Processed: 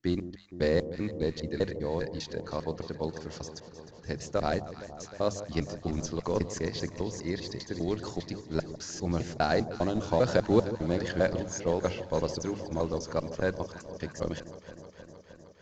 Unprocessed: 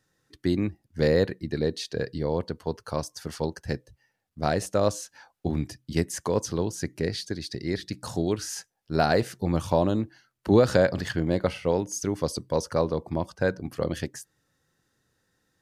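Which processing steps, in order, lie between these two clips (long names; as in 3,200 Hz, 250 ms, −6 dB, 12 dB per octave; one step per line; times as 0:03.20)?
slices reordered back to front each 200 ms, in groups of 3
mains-hum notches 50/100/150/200 Hz
in parallel at −10.5 dB: comparator with hysteresis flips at −19.5 dBFS
on the sum: noise that follows the level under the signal 30 dB
downsampling to 16,000 Hz
delay that swaps between a low-pass and a high-pass 155 ms, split 940 Hz, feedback 86%, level −12.5 dB
level −4.5 dB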